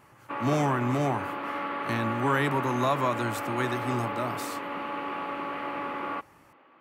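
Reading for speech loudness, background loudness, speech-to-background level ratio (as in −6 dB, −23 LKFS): −29.5 LKFS, −33.5 LKFS, 4.0 dB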